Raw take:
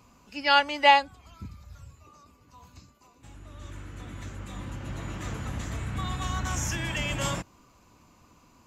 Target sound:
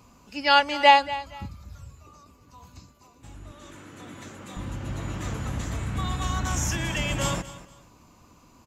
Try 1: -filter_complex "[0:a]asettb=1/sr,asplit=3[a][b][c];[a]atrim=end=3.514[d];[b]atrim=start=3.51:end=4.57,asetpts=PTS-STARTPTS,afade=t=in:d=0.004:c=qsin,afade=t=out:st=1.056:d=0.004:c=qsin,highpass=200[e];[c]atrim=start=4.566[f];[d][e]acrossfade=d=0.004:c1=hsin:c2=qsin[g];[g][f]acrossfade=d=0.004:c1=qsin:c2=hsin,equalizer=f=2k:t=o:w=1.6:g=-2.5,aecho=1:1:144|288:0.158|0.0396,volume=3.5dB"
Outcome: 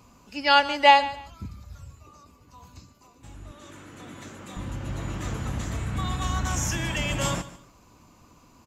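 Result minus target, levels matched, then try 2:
echo 91 ms early
-filter_complex "[0:a]asettb=1/sr,asplit=3[a][b][c];[a]atrim=end=3.514[d];[b]atrim=start=3.51:end=4.57,asetpts=PTS-STARTPTS,afade=t=in:d=0.004:c=qsin,afade=t=out:st=1.056:d=0.004:c=qsin,highpass=200[e];[c]atrim=start=4.566[f];[d][e]acrossfade=d=0.004:c1=hsin:c2=qsin[g];[g][f]acrossfade=d=0.004:c1=qsin:c2=hsin,equalizer=f=2k:t=o:w=1.6:g=-2.5,aecho=1:1:235|470:0.158|0.0396,volume=3.5dB"

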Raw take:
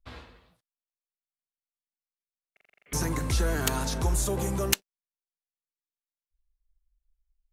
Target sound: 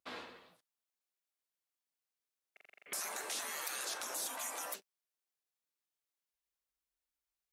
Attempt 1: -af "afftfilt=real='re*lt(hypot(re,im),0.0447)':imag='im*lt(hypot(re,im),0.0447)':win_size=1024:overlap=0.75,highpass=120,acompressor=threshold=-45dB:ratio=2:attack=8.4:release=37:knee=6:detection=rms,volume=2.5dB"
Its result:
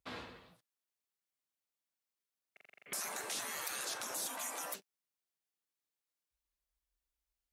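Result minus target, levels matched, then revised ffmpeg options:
125 Hz band +9.5 dB
-af "afftfilt=real='re*lt(hypot(re,im),0.0447)':imag='im*lt(hypot(re,im),0.0447)':win_size=1024:overlap=0.75,highpass=280,acompressor=threshold=-45dB:ratio=2:attack=8.4:release=37:knee=6:detection=rms,volume=2.5dB"

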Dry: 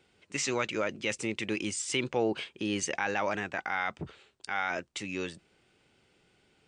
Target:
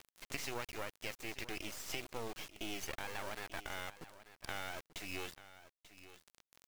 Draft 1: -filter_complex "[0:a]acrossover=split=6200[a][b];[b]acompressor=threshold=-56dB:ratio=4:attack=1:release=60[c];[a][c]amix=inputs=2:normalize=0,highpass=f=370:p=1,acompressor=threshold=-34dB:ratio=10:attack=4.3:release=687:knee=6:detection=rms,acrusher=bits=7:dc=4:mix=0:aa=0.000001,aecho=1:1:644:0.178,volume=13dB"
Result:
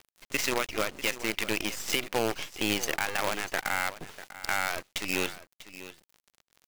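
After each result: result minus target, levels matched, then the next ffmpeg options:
compressor: peak gain reduction -10.5 dB; echo 0.244 s early
-filter_complex "[0:a]acrossover=split=6200[a][b];[b]acompressor=threshold=-56dB:ratio=4:attack=1:release=60[c];[a][c]amix=inputs=2:normalize=0,highpass=f=370:p=1,acompressor=threshold=-45.5dB:ratio=10:attack=4.3:release=687:knee=6:detection=rms,acrusher=bits=7:dc=4:mix=0:aa=0.000001,aecho=1:1:644:0.178,volume=13dB"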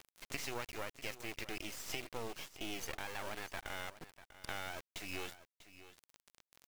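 echo 0.244 s early
-filter_complex "[0:a]acrossover=split=6200[a][b];[b]acompressor=threshold=-56dB:ratio=4:attack=1:release=60[c];[a][c]amix=inputs=2:normalize=0,highpass=f=370:p=1,acompressor=threshold=-45.5dB:ratio=10:attack=4.3:release=687:knee=6:detection=rms,acrusher=bits=7:dc=4:mix=0:aa=0.000001,aecho=1:1:888:0.178,volume=13dB"

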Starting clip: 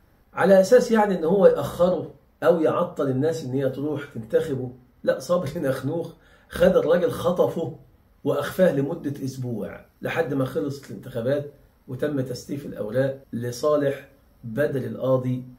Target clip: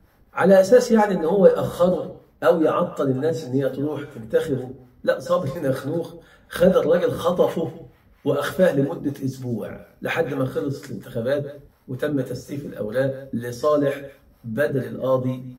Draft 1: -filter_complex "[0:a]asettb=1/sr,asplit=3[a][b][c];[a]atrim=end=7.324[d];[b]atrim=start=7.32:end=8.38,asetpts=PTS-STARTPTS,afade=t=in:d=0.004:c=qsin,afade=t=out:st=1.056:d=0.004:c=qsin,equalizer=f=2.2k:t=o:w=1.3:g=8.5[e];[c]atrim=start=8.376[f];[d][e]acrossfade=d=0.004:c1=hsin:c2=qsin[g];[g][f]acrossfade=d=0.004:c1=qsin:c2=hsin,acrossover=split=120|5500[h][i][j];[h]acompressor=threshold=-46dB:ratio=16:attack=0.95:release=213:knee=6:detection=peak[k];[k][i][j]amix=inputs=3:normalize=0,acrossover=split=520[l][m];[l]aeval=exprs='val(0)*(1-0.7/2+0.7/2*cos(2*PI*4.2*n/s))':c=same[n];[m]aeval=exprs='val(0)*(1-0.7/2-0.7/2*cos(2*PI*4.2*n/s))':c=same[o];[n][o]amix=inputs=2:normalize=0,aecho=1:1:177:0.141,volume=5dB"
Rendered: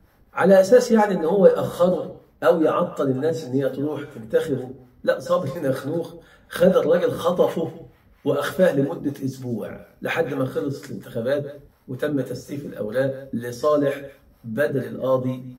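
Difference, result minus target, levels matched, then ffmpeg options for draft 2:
compressor: peak gain reduction +9 dB
-filter_complex "[0:a]asettb=1/sr,asplit=3[a][b][c];[a]atrim=end=7.324[d];[b]atrim=start=7.32:end=8.38,asetpts=PTS-STARTPTS,afade=t=in:d=0.004:c=qsin,afade=t=out:st=1.056:d=0.004:c=qsin,equalizer=f=2.2k:t=o:w=1.3:g=8.5[e];[c]atrim=start=8.376[f];[d][e]acrossfade=d=0.004:c1=hsin:c2=qsin[g];[g][f]acrossfade=d=0.004:c1=qsin:c2=hsin,acrossover=split=120|5500[h][i][j];[h]acompressor=threshold=-36.5dB:ratio=16:attack=0.95:release=213:knee=6:detection=peak[k];[k][i][j]amix=inputs=3:normalize=0,acrossover=split=520[l][m];[l]aeval=exprs='val(0)*(1-0.7/2+0.7/2*cos(2*PI*4.2*n/s))':c=same[n];[m]aeval=exprs='val(0)*(1-0.7/2-0.7/2*cos(2*PI*4.2*n/s))':c=same[o];[n][o]amix=inputs=2:normalize=0,aecho=1:1:177:0.141,volume=5dB"

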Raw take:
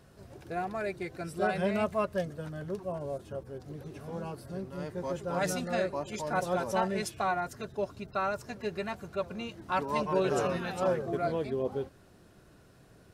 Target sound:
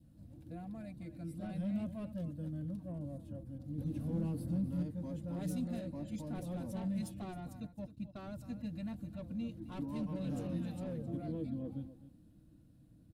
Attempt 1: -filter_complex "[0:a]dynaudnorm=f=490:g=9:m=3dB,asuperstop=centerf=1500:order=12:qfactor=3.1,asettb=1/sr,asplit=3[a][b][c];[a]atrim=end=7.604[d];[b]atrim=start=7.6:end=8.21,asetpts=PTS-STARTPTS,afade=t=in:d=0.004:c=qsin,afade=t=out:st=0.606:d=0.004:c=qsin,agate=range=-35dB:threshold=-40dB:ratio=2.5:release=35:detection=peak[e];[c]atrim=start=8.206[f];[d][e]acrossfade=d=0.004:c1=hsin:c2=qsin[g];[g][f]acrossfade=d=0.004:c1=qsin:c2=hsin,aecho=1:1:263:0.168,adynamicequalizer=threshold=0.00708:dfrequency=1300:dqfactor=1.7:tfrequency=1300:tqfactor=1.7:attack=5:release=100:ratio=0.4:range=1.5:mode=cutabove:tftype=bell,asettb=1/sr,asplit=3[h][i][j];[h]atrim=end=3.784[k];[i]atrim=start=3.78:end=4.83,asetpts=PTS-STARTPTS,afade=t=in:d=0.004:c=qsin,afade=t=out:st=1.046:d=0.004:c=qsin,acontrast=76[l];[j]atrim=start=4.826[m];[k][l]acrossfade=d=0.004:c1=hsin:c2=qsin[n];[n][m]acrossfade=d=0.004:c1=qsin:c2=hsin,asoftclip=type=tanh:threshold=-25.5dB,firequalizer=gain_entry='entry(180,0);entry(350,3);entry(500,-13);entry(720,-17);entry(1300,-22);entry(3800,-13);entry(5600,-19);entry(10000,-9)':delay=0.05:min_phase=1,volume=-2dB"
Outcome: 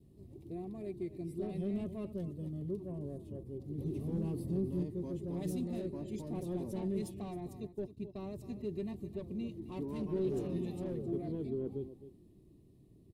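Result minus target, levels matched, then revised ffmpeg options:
500 Hz band +7.0 dB
-filter_complex "[0:a]dynaudnorm=f=490:g=9:m=3dB,asuperstop=centerf=390:order=12:qfactor=3.1,asettb=1/sr,asplit=3[a][b][c];[a]atrim=end=7.604[d];[b]atrim=start=7.6:end=8.21,asetpts=PTS-STARTPTS,afade=t=in:d=0.004:c=qsin,afade=t=out:st=0.606:d=0.004:c=qsin,agate=range=-35dB:threshold=-40dB:ratio=2.5:release=35:detection=peak[e];[c]atrim=start=8.206[f];[d][e]acrossfade=d=0.004:c1=hsin:c2=qsin[g];[g][f]acrossfade=d=0.004:c1=qsin:c2=hsin,aecho=1:1:263:0.168,adynamicequalizer=threshold=0.00708:dfrequency=1300:dqfactor=1.7:tfrequency=1300:tqfactor=1.7:attack=5:release=100:ratio=0.4:range=1.5:mode=cutabove:tftype=bell,asettb=1/sr,asplit=3[h][i][j];[h]atrim=end=3.784[k];[i]atrim=start=3.78:end=4.83,asetpts=PTS-STARTPTS,afade=t=in:d=0.004:c=qsin,afade=t=out:st=1.046:d=0.004:c=qsin,acontrast=76[l];[j]atrim=start=4.826[m];[k][l]acrossfade=d=0.004:c1=hsin:c2=qsin[n];[n][m]acrossfade=d=0.004:c1=qsin:c2=hsin,asoftclip=type=tanh:threshold=-25.5dB,firequalizer=gain_entry='entry(180,0);entry(350,3);entry(500,-13);entry(720,-17);entry(1300,-22);entry(3800,-13);entry(5600,-19);entry(10000,-9)':delay=0.05:min_phase=1,volume=-2dB"

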